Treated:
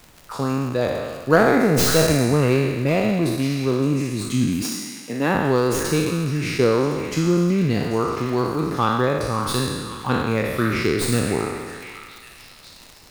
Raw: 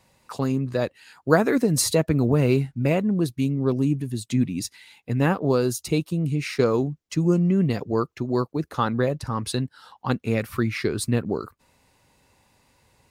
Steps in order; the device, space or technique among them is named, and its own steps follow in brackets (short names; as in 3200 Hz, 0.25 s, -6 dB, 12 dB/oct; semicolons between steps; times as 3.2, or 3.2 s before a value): spectral trails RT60 1.50 s; record under a worn stylus (tracing distortion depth 0.095 ms; crackle 79/s -29 dBFS; pink noise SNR 30 dB); 4.62–5.35 HPF 180 Hz 24 dB/oct; delay with a stepping band-pass 0.547 s, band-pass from 1600 Hz, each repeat 0.7 oct, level -7.5 dB